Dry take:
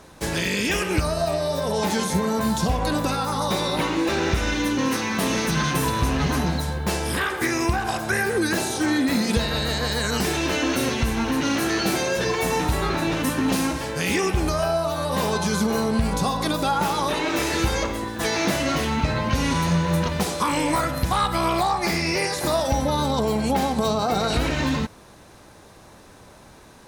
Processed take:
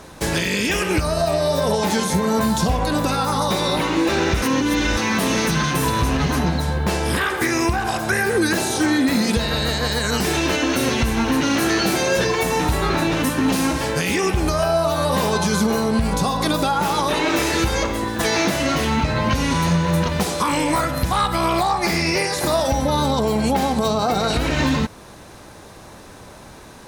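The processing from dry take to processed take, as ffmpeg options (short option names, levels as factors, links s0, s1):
-filter_complex "[0:a]asettb=1/sr,asplit=3[s0][s1][s2];[s0]atrim=end=6.394[s3];[s1]atrim=start=6.39:end=7.16,asetpts=PTS-STARTPTS,afade=t=in:d=0.004:c=qsin,afade=t=out:st=0.766:d=0.004:c=qsin,highshelf=f=5600:g=-6[s4];[s2]atrim=start=7.156[s5];[s3][s4]acrossfade=d=0.004:c1=hsin:c2=qsin[s6];[s6][s5]acrossfade=d=0.004:c1=qsin:c2=hsin,asplit=3[s7][s8][s9];[s7]atrim=end=4.422[s10];[s8]atrim=start=4.418:end=4.972,asetpts=PTS-STARTPTS,areverse[s11];[s9]atrim=start=4.968[s12];[s10][s11]acrossfade=d=0.004:c1=hsin:c2=hsin[s13];[s13][s12]acrossfade=d=0.004:c1=hsin:c2=hsin,alimiter=limit=0.158:level=0:latency=1:release=342,volume=2.11"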